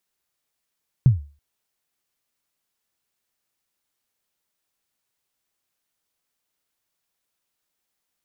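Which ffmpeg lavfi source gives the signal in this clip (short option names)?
-f lavfi -i "aevalsrc='0.473*pow(10,-3*t/0.35)*sin(2*PI*(140*0.141/log(72/140)*(exp(log(72/140)*min(t,0.141)/0.141)-1)+72*max(t-0.141,0)))':d=0.33:s=44100"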